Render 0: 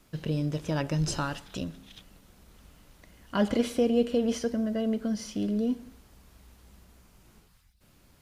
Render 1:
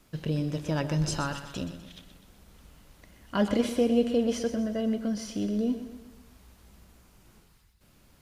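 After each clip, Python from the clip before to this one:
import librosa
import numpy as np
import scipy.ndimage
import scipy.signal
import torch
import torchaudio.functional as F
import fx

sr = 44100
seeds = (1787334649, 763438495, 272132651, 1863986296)

y = fx.echo_feedback(x, sr, ms=125, feedback_pct=49, wet_db=-11)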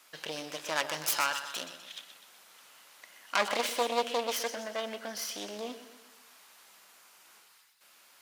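y = fx.self_delay(x, sr, depth_ms=0.32)
y = scipy.signal.sosfilt(scipy.signal.butter(2, 950.0, 'highpass', fs=sr, output='sos'), y)
y = y * 10.0 ** (6.5 / 20.0)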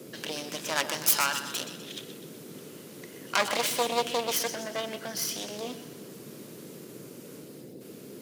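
y = fx.high_shelf(x, sr, hz=5800.0, db=8.0)
y = fx.dmg_noise_band(y, sr, seeds[0], low_hz=130.0, high_hz=480.0, level_db=-47.0)
y = y * 10.0 ** (1.5 / 20.0)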